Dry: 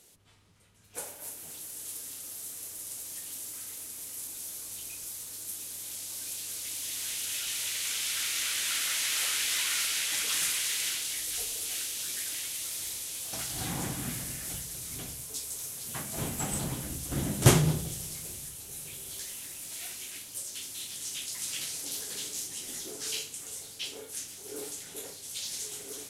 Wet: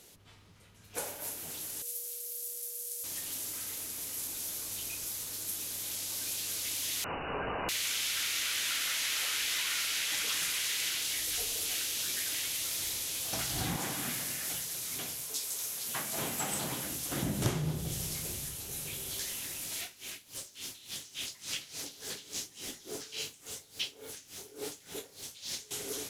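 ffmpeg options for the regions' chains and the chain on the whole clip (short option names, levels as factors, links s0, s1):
-filter_complex "[0:a]asettb=1/sr,asplit=3[s0][s1][s2];[s0]atrim=end=1.824[s3];[s1]atrim=start=1.82:end=3.04,asetpts=PTS-STARTPTS,afade=t=in:d=0.004:c=qsin,afade=t=out:st=1.216:d=0.004:c=qsin,aderivative,aeval=exprs='val(0)*sin(2*PI*490*n/s)':c=same,aeval=exprs='val(0)+0.001*sin(2*PI*480*n/s)':c=same[s4];[s2]atrim=start=3.036[s5];[s3][s4]acrossfade=d=0.004:c1=hsin:c2=qsin[s6];[s6][s5]acrossfade=d=0.004:c1=qsin:c2=hsin,asettb=1/sr,asplit=3[s7][s8][s9];[s7]atrim=end=7.044[s10];[s8]atrim=start=7.04:end=7.69,asetpts=PTS-STARTPTS,afade=t=in:d=0.004:c=qsin,afade=t=out:st=0.646:d=0.004:c=qsin,acontrast=48,lowpass=f=2600:t=q:w=0.5098,lowpass=f=2600:t=q:w=0.6013,lowpass=f=2600:t=q:w=0.9,lowpass=f=2600:t=q:w=2.563,afreqshift=-3000[s11];[s9]atrim=start=7.686[s12];[s10][s11]acrossfade=d=0.004:c1=hsin:c2=qsin[s13];[s13][s12]acrossfade=d=0.004:c1=qsin:c2=hsin,asettb=1/sr,asplit=3[s14][s15][s16];[s14]atrim=end=13.764[s17];[s15]atrim=start=13.76:end=17.23,asetpts=PTS-STARTPTS,afade=t=in:d=0.004:c=qsin,afade=t=out:st=3.466:d=0.004:c=qsin,highpass=f=240:p=1,lowshelf=f=490:g=-6[s18];[s16]atrim=start=17.226[s19];[s17][s18]acrossfade=d=0.004:c1=hsin:c2=qsin[s20];[s20][s19]acrossfade=d=0.004:c1=qsin:c2=hsin,asettb=1/sr,asplit=3[s21][s22][s23];[s21]atrim=end=19.814[s24];[s22]atrim=start=19.81:end=25.71,asetpts=PTS-STARTPTS,afade=t=in:d=0.004:c=qsin,afade=t=out:st=5.896:d=0.004:c=qsin,acrossover=split=7200[s25][s26];[s26]acompressor=threshold=0.00708:ratio=4:attack=1:release=60[s27];[s25][s27]amix=inputs=2:normalize=0,acrusher=bits=8:mix=0:aa=0.5,aeval=exprs='val(0)*pow(10,-18*(0.5-0.5*cos(2*PI*3.5*n/s))/20)':c=same[s28];[s23]atrim=start=25.706[s29];[s24][s28]acrossfade=d=0.004:c1=hsin:c2=qsin[s30];[s30][s29]acrossfade=d=0.004:c1=qsin:c2=hsin,equalizer=f=8900:w=1.5:g=-6,acompressor=threshold=0.0178:ratio=5,volume=1.78"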